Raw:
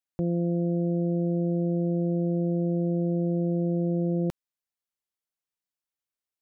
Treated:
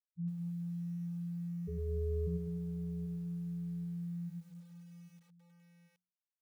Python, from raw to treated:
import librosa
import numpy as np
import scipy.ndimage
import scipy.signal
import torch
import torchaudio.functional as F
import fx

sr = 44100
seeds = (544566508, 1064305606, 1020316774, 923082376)

p1 = fx.spec_topn(x, sr, count=1)
p2 = fx.low_shelf(p1, sr, hz=110.0, db=7.0)
p3 = fx.ring_mod(p2, sr, carrier_hz=250.0, at=(1.67, 2.26), fade=0.02)
p4 = fx.hum_notches(p3, sr, base_hz=60, count=10)
p5 = p4 + fx.echo_feedback(p4, sr, ms=789, feedback_pct=22, wet_db=-14, dry=0)
p6 = fx.echo_crushed(p5, sr, ms=102, feedback_pct=55, bits=10, wet_db=-5.0)
y = p6 * librosa.db_to_amplitude(-6.0)